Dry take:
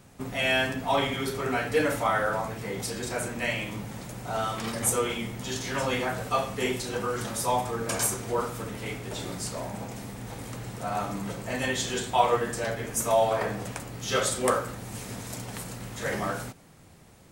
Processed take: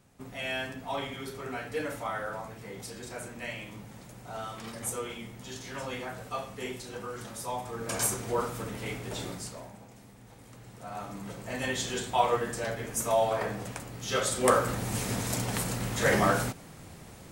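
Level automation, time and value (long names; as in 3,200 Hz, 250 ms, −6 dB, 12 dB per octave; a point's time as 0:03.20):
0:07.59 −9 dB
0:08.06 −1.5 dB
0:09.23 −1.5 dB
0:09.81 −14 dB
0:10.39 −14 dB
0:11.71 −3 dB
0:14.25 −3 dB
0:14.73 +6 dB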